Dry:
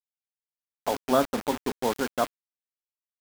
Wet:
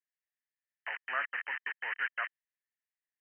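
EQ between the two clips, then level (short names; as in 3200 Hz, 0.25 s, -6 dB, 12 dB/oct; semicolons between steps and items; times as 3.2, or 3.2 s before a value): resonant high-pass 1800 Hz, resonance Q 9.1; brick-wall FIR low-pass 3100 Hz; -6.0 dB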